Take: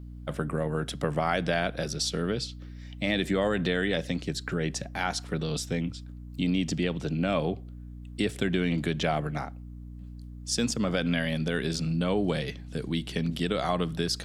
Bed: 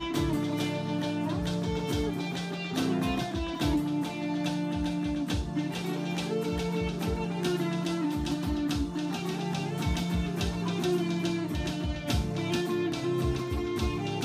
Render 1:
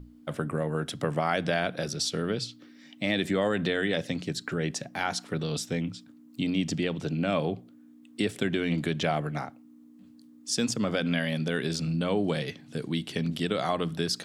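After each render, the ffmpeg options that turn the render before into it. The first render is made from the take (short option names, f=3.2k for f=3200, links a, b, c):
-af "bandreject=f=60:t=h:w=6,bandreject=f=120:t=h:w=6,bandreject=f=180:t=h:w=6"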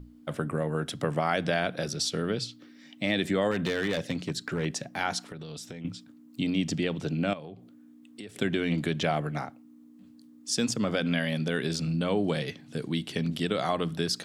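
-filter_complex "[0:a]asettb=1/sr,asplit=3[a][b][c];[a]atrim=end=3.514[d];[b]atrim=start=3.51:end=4.66,asetpts=PTS-STARTPTS,afade=t=in:d=0.004:c=qsin,afade=t=out:st=1.146:d=0.004:c=qsin,asoftclip=type=hard:threshold=-23dB[e];[c]atrim=start=4.656[f];[d][e]acrossfade=d=0.004:c1=hsin:c2=qsin[g];[g][f]acrossfade=d=0.004:c1=qsin:c2=hsin,asettb=1/sr,asplit=3[h][i][j];[h]atrim=end=5.244[k];[i]atrim=start=5.24:end=5.85,asetpts=PTS-STARTPTS,afade=t=in:d=0.004:c=qsin,afade=t=out:st=0.606:d=0.004:c=qsin,acompressor=threshold=-36dB:ratio=16:attack=3.2:release=140:knee=1:detection=peak[l];[j]atrim=start=5.846[m];[k][l]acrossfade=d=0.004:c1=hsin:c2=qsin[n];[n][m]acrossfade=d=0.004:c1=qsin:c2=hsin,asettb=1/sr,asplit=3[o][p][q];[o]atrim=end=7.334[r];[p]atrim=start=7.33:end=8.36,asetpts=PTS-STARTPTS,afade=t=in:d=0.004:c=qsin,afade=t=out:st=1.026:d=0.004:c=qsin,acompressor=threshold=-43dB:ratio=3:attack=3.2:release=140:knee=1:detection=peak[s];[q]atrim=start=8.356[t];[r][s]acrossfade=d=0.004:c1=hsin:c2=qsin[u];[u][t]acrossfade=d=0.004:c1=qsin:c2=hsin"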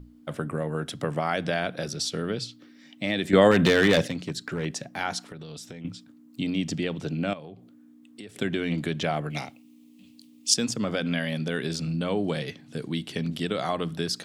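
-filter_complex "[0:a]asettb=1/sr,asplit=3[a][b][c];[a]atrim=end=9.304[d];[b]atrim=start=9.3:end=10.54,asetpts=PTS-STARTPTS,afade=t=in:d=0.004:c=qsin,afade=t=out:st=1.236:d=0.004:c=qsin,highshelf=f=2k:t=q:w=3:g=9[e];[c]atrim=start=10.536[f];[d][e]acrossfade=d=0.004:c1=hsin:c2=qsin[g];[g][f]acrossfade=d=0.004:c1=qsin:c2=hsin,asplit=3[h][i][j];[h]atrim=end=3.332[k];[i]atrim=start=3.328:end=4.082,asetpts=PTS-STARTPTS,volume=9.5dB[l];[j]atrim=start=4.078[m];[k][l]acrossfade=d=0.004:c1=hsin:c2=hsin[n];[n][m]acrossfade=d=0.004:c1=hsin:c2=hsin"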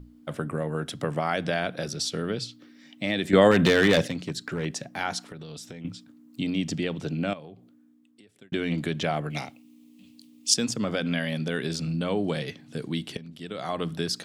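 -filter_complex "[0:a]asplit=3[a][b][c];[a]atrim=end=8.52,asetpts=PTS-STARTPTS,afade=t=out:st=7.25:d=1.27[d];[b]atrim=start=8.52:end=13.17,asetpts=PTS-STARTPTS,afade=t=in:d=0.004:c=hsin,afade=t=out:st=4.646:d=0.004:c=hsin:silence=0.188365[e];[c]atrim=start=13.17,asetpts=PTS-STARTPTS,afade=t=in:d=0.66:c=qua:silence=0.188365[f];[d][e][f]concat=n=3:v=0:a=1"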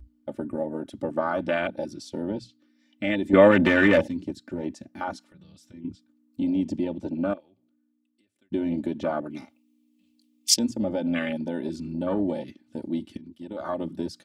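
-af "afwtdn=0.0398,aecho=1:1:3.4:0.82"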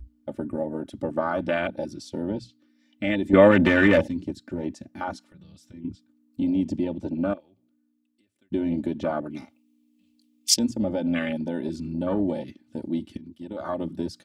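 -af "lowshelf=f=110:g=7.5"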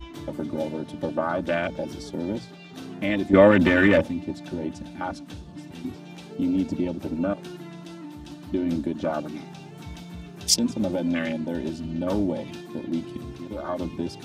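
-filter_complex "[1:a]volume=-10dB[a];[0:a][a]amix=inputs=2:normalize=0"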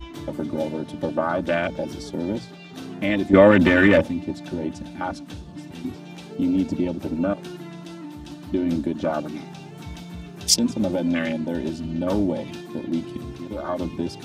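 -af "volume=2.5dB,alimiter=limit=-2dB:level=0:latency=1"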